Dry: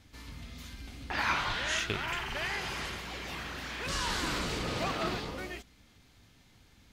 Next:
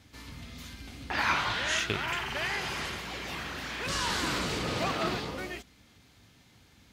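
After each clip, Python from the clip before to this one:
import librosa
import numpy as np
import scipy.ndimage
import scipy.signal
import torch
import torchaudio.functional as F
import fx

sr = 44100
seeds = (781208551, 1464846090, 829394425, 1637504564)

y = scipy.signal.sosfilt(scipy.signal.butter(2, 66.0, 'highpass', fs=sr, output='sos'), x)
y = y * 10.0 ** (2.5 / 20.0)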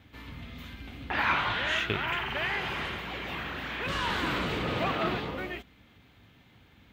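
y = fx.cheby_harmonics(x, sr, harmonics=(5,), levels_db=(-26,), full_scale_db=-13.5)
y = fx.band_shelf(y, sr, hz=7400.0, db=-14.5, octaves=1.7)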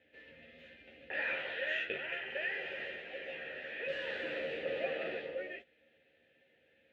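y = fx.vowel_filter(x, sr, vowel='e')
y = fx.doubler(y, sr, ms=13.0, db=-4.5)
y = y * 10.0 ** (2.5 / 20.0)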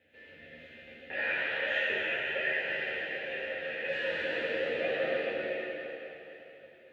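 y = fx.rev_plate(x, sr, seeds[0], rt60_s=3.6, hf_ratio=0.9, predelay_ms=0, drr_db=-5.0)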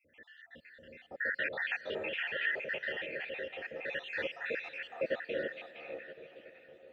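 y = fx.spec_dropout(x, sr, seeds[1], share_pct=67)
y = fx.echo_diffused(y, sr, ms=504, feedback_pct=49, wet_db=-16)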